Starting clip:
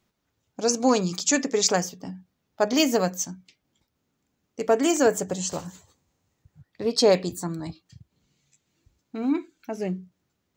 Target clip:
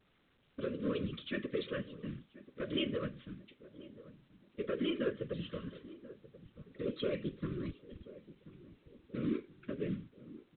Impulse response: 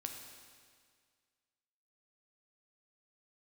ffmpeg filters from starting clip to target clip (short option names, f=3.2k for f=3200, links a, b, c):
-filter_complex "[0:a]adynamicequalizer=threshold=0.00398:dfrequency=3000:dqfactor=5.3:tfrequency=3000:tqfactor=5.3:attack=5:release=100:ratio=0.375:range=3:mode=boostabove:tftype=bell,acompressor=threshold=-34dB:ratio=2,acrusher=bits=4:mode=log:mix=0:aa=0.000001,asoftclip=type=tanh:threshold=-21.5dB,afftfilt=real='hypot(re,im)*cos(2*PI*random(0))':imag='hypot(re,im)*sin(2*PI*random(1))':win_size=512:overlap=0.75,asuperstop=centerf=800:order=8:qfactor=1.6,asplit=2[a][b];[b]adelay=1033,lowpass=f=900:p=1,volume=-16.5dB,asplit=2[c][d];[d]adelay=1033,lowpass=f=900:p=1,volume=0.53,asplit=2[e][f];[f]adelay=1033,lowpass=f=900:p=1,volume=0.53,asplit=2[g][h];[h]adelay=1033,lowpass=f=900:p=1,volume=0.53,asplit=2[i][j];[j]adelay=1033,lowpass=f=900:p=1,volume=0.53[k];[c][e][g][i][k]amix=inputs=5:normalize=0[l];[a][l]amix=inputs=2:normalize=0,volume=2.5dB" -ar 8000 -c:a pcm_alaw